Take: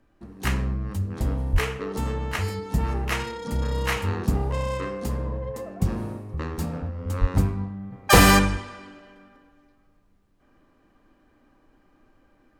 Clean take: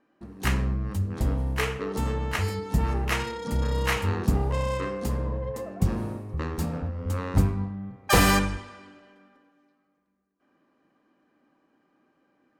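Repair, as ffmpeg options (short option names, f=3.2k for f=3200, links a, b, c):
-filter_complex "[0:a]asplit=3[a][b][c];[a]afade=t=out:st=1.52:d=0.02[d];[b]highpass=f=140:w=0.5412,highpass=f=140:w=1.3066,afade=t=in:st=1.52:d=0.02,afade=t=out:st=1.64:d=0.02[e];[c]afade=t=in:st=1.64:d=0.02[f];[d][e][f]amix=inputs=3:normalize=0,asplit=3[g][h][i];[g]afade=t=out:st=7.2:d=0.02[j];[h]highpass=f=140:w=0.5412,highpass=f=140:w=1.3066,afade=t=in:st=7.2:d=0.02,afade=t=out:st=7.32:d=0.02[k];[i]afade=t=in:st=7.32:d=0.02[l];[j][k][l]amix=inputs=3:normalize=0,agate=range=-21dB:threshold=-53dB,asetnsamples=n=441:p=0,asendcmd='7.92 volume volume -5dB',volume=0dB"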